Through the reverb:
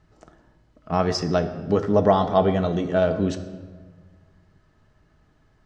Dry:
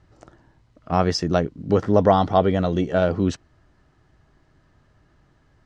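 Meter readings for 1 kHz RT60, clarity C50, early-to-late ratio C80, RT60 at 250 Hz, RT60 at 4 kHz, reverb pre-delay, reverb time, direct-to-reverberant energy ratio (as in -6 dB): 1.3 s, 11.5 dB, 12.5 dB, 1.9 s, 1.0 s, 5 ms, 1.5 s, 6.5 dB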